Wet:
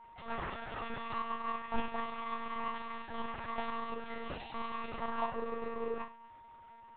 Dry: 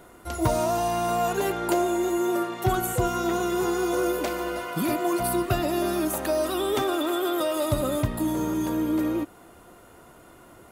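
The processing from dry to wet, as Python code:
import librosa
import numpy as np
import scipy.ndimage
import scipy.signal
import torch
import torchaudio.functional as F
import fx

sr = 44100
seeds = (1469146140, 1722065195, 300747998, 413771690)

y = np.maximum(x, 0.0)
y = fx.spec_erase(y, sr, start_s=6.72, length_s=0.24, low_hz=210.0, high_hz=2500.0)
y = y * np.sin(2.0 * np.pi * 750.0 * np.arange(len(y)) / sr)
y = fx.resonator_bank(y, sr, root=53, chord='major', decay_s=0.7)
y = fx.stretch_grains(y, sr, factor=0.65, grain_ms=97.0)
y = fx.lpc_monotone(y, sr, seeds[0], pitch_hz=230.0, order=10)
y = y + 10.0 ** (-69.0 / 20.0) * np.sin(2.0 * np.pi * 930.0 * np.arange(len(y)) / sr)
y = y * 10.0 ** (16.0 / 20.0)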